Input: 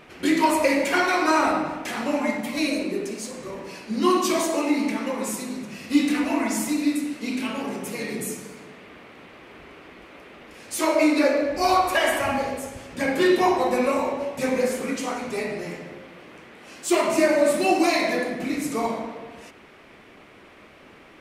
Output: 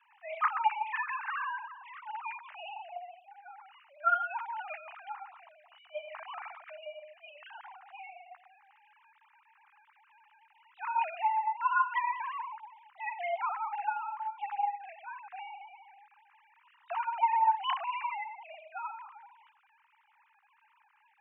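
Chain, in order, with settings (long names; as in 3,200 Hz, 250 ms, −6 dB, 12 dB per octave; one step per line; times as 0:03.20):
three sine waves on the formant tracks
single-sideband voice off tune +310 Hz 520–2,900 Hz
high-shelf EQ 2,400 Hz −10 dB
level −7 dB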